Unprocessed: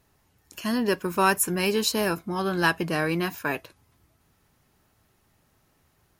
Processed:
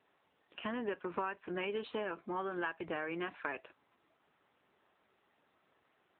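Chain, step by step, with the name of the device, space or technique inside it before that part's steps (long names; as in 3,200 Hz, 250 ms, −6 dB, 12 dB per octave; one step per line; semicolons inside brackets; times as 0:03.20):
voicemail (band-pass filter 350–3,200 Hz; downward compressor 8 to 1, threshold −32 dBFS, peak gain reduction 16 dB; level −1.5 dB; AMR narrowband 7.95 kbit/s 8,000 Hz)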